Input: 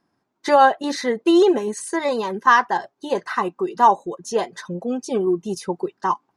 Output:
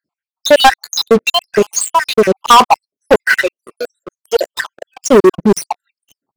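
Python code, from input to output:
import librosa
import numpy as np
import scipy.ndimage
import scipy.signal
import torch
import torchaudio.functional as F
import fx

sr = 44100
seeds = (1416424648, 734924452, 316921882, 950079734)

y = fx.spec_dropout(x, sr, seeds[0], share_pct=78)
y = fx.highpass(y, sr, hz=570.0, slope=24, at=(3.37, 4.9))
y = fx.leveller(y, sr, passes=5)
y = y * 10.0 ** (3.5 / 20.0)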